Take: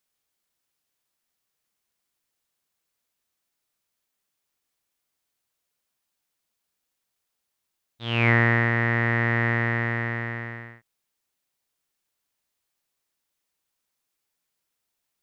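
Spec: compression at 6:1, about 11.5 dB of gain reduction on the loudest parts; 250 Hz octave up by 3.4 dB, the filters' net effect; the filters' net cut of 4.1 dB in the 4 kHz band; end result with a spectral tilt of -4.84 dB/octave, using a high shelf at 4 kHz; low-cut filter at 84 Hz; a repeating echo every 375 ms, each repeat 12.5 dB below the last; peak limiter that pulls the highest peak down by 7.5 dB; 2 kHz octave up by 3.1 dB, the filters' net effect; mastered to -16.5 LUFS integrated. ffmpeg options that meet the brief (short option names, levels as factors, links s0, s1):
-af "highpass=84,equalizer=f=250:t=o:g=4,equalizer=f=2000:t=o:g=6,highshelf=f=4000:g=-8,equalizer=f=4000:t=o:g=-6,acompressor=threshold=0.0631:ratio=6,alimiter=limit=0.0841:level=0:latency=1,aecho=1:1:375|750|1125:0.237|0.0569|0.0137,volume=7.5"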